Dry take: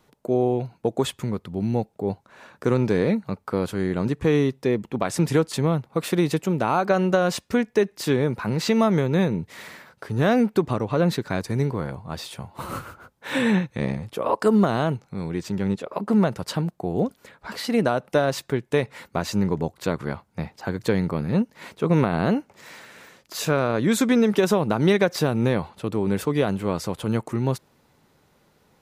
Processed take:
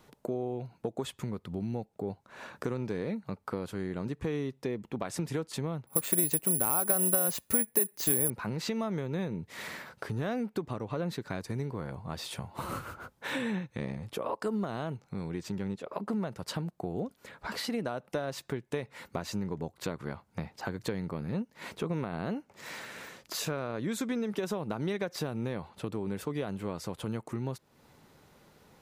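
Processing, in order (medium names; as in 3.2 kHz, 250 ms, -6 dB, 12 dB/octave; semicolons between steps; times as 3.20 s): compression 3:1, threshold -37 dBFS, peak gain reduction 16.5 dB; 5.87–8.30 s: careless resampling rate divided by 4×, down filtered, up zero stuff; trim +1.5 dB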